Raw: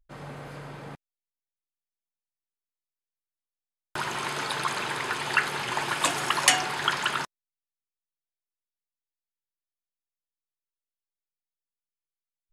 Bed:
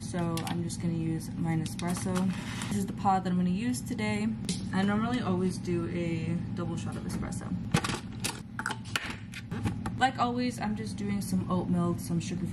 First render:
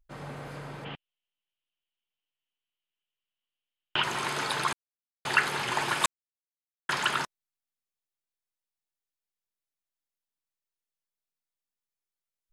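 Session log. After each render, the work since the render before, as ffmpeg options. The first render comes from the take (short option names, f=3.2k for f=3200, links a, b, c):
-filter_complex "[0:a]asplit=3[a][b][c];[a]afade=t=out:st=0.84:d=0.02[d];[b]lowpass=f=3k:t=q:w=8.4,afade=t=in:st=0.84:d=0.02,afade=t=out:st=4.02:d=0.02[e];[c]afade=t=in:st=4.02:d=0.02[f];[d][e][f]amix=inputs=3:normalize=0,asplit=5[g][h][i][j][k];[g]atrim=end=4.73,asetpts=PTS-STARTPTS,afade=t=out:st=4.726:d=0.004:c=hsin[l];[h]atrim=start=4.73:end=5.25,asetpts=PTS-STARTPTS,volume=0[m];[i]atrim=start=5.25:end=6.06,asetpts=PTS-STARTPTS,afade=t=in:d=0.004:c=hsin,afade=t=out:st=0.806:d=0.004:c=hsin[n];[j]atrim=start=6.06:end=6.89,asetpts=PTS-STARTPTS,volume=0[o];[k]atrim=start=6.89,asetpts=PTS-STARTPTS,afade=t=in:d=0.004:c=hsin[p];[l][m][n][o][p]concat=n=5:v=0:a=1"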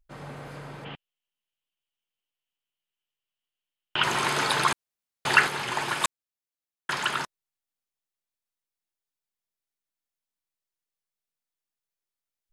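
-filter_complex "[0:a]asettb=1/sr,asplit=3[a][b][c];[a]atrim=end=4.014[d];[b]atrim=start=4.01:end=5.47,asetpts=PTS-STARTPTS,afade=t=in:d=0.004:c=qsin,afade=t=out:st=1.456:d=0.004:c=qsin,acontrast=38[e];[c]atrim=start=5.466[f];[d][e]acrossfade=d=0.004:c1=hsin:c2=qsin[g];[g][f]acrossfade=d=0.004:c1=qsin:c2=hsin"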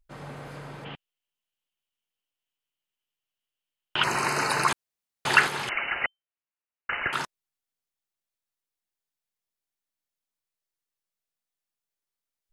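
-filter_complex "[0:a]asettb=1/sr,asplit=3[a][b][c];[a]atrim=end=4.044[d];[b]atrim=start=4.04:end=4.69,asetpts=PTS-STARTPTS,afade=t=in:d=0.004:c=qsin,afade=t=out:st=0.646:d=0.004:c=qsin,asuperstop=centerf=3400:order=4:qfactor=2.8[e];[c]atrim=start=4.686[f];[d][e]acrossfade=d=0.004:c1=hsin:c2=qsin[g];[g][f]acrossfade=d=0.004:c1=qsin:c2=hsin,asettb=1/sr,asplit=3[h][i][j];[h]atrim=end=5.694[k];[i]atrim=start=5.69:end=7.13,asetpts=PTS-STARTPTS,afade=t=in:d=0.004:c=qsin,afade=t=out:st=1.436:d=0.004:c=qsin,lowpass=f=2.6k:t=q:w=0.5098,lowpass=f=2.6k:t=q:w=0.6013,lowpass=f=2.6k:t=q:w=0.9,lowpass=f=2.6k:t=q:w=2.563,afreqshift=-3100[l];[j]atrim=start=7.126[m];[k][l]acrossfade=d=0.004:c1=hsin:c2=qsin[n];[n][m]acrossfade=d=0.004:c1=qsin:c2=hsin"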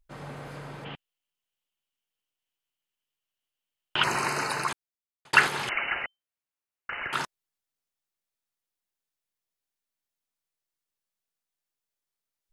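-filter_complex "[0:a]asettb=1/sr,asplit=3[a][b][c];[a]atrim=end=5.994[d];[b]atrim=start=5.99:end=7.13,asetpts=PTS-STARTPTS,afade=t=in:d=0.004:c=qsin,afade=t=out:st=1.136:d=0.004:c=qsin,acompressor=threshold=-31dB:ratio=3:attack=3.2:release=140:knee=1:detection=peak[e];[c]atrim=start=7.126[f];[d][e]acrossfade=d=0.004:c1=hsin:c2=qsin[g];[g][f]acrossfade=d=0.004:c1=qsin:c2=hsin,asplit=2[h][i];[h]atrim=end=5.33,asetpts=PTS-STARTPTS,afade=t=out:st=4.01:d=1.32[j];[i]atrim=start=5.33,asetpts=PTS-STARTPTS,afade=t=in:d=0.004:c=hsin[k];[j][k]concat=n=2:v=0:a=1"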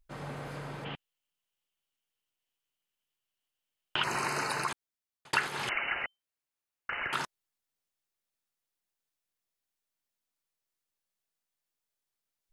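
-af "acompressor=threshold=-30dB:ratio=2.5"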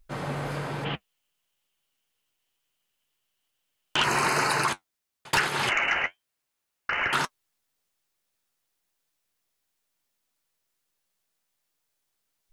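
-af "aeval=exprs='0.237*sin(PI/2*2.82*val(0)/0.237)':c=same,flanger=delay=5.6:depth=9.4:regen=-52:speed=1.1:shape=triangular"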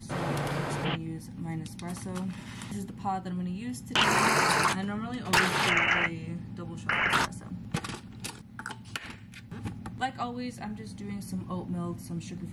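-filter_complex "[1:a]volume=-5.5dB[a];[0:a][a]amix=inputs=2:normalize=0"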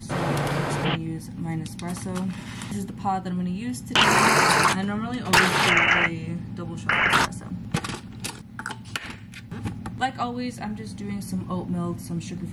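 -af "volume=6dB"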